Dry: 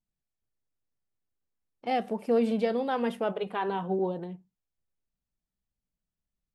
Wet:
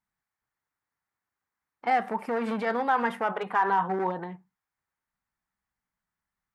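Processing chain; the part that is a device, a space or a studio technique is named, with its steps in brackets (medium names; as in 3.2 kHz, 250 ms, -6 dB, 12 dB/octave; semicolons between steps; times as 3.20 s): limiter into clipper (peak limiter -23 dBFS, peak gain reduction 7 dB; hard clipper -25 dBFS, distortion -24 dB); high-pass 76 Hz 6 dB/octave; high-order bell 1.3 kHz +13.5 dB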